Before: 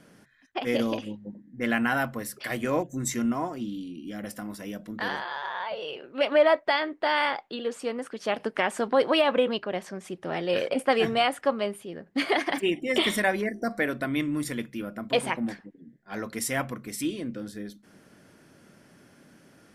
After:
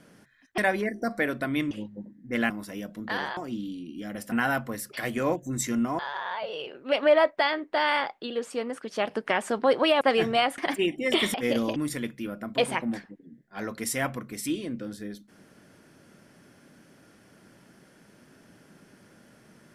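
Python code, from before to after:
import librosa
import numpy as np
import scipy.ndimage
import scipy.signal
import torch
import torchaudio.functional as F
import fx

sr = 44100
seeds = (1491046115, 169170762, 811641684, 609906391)

y = fx.edit(x, sr, fx.swap(start_s=0.58, length_s=0.42, other_s=13.18, other_length_s=1.13),
    fx.swap(start_s=1.79, length_s=1.67, other_s=4.41, other_length_s=0.87),
    fx.cut(start_s=9.3, length_s=1.53),
    fx.cut(start_s=11.4, length_s=1.02), tone=tone)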